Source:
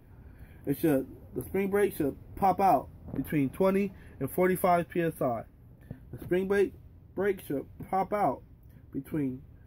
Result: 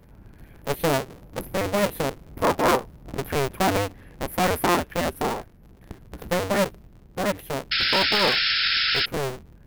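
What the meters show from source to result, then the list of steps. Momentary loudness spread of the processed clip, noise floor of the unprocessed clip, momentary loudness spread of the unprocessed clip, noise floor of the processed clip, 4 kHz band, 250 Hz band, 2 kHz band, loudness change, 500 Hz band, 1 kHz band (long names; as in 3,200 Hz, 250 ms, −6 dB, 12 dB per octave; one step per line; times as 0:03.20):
15 LU, −55 dBFS, 15 LU, −51 dBFS, can't be measured, +1.0 dB, +13.5 dB, +6.5 dB, +3.5 dB, +4.0 dB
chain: sub-harmonics by changed cycles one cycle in 2, inverted
sound drawn into the spectrogram noise, 0:07.71–0:09.06, 1,300–5,400 Hz −26 dBFS
level +3.5 dB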